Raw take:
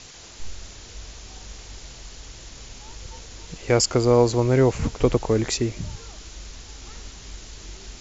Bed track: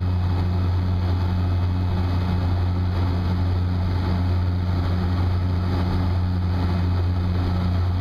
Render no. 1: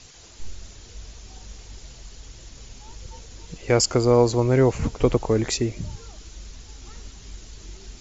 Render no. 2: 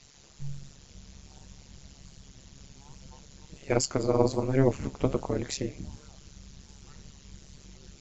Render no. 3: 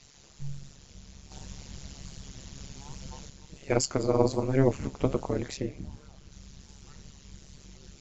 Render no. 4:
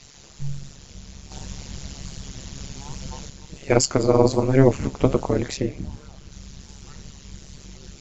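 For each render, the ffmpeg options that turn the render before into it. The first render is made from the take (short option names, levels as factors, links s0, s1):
-af "afftdn=nr=6:nf=-43"
-af "flanger=delay=7.5:depth=9.1:regen=64:speed=1.3:shape=sinusoidal,tremolo=f=140:d=0.974"
-filter_complex "[0:a]asettb=1/sr,asplit=3[s0][s1][s2];[s0]atrim=end=1.314[s3];[s1]atrim=start=1.31:end=3.3,asetpts=PTS-STARTPTS,afade=t=in:d=0.004:c=qsin,afade=t=out:st=1.986:d=0.004:c=qsin,acontrast=63[s4];[s2]atrim=start=3.296[s5];[s3][s4]acrossfade=d=0.004:c1=hsin:c2=qsin[s6];[s6][s5]acrossfade=d=0.004:c1=qsin:c2=hsin,asettb=1/sr,asplit=3[s7][s8][s9];[s7]atrim=end=5.484[s10];[s8]atrim=start=5.48:end=6.32,asetpts=PTS-STARTPTS,afade=t=in:d=0.004:c=qsin,afade=t=out:st=0.836:d=0.004:c=qsin,highshelf=f=4100:g=-9[s11];[s9]atrim=start=6.316[s12];[s10][s11]acrossfade=d=0.004:c1=hsin:c2=qsin[s13];[s13][s12]acrossfade=d=0.004:c1=qsin:c2=hsin"
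-af "volume=2.51,alimiter=limit=0.794:level=0:latency=1"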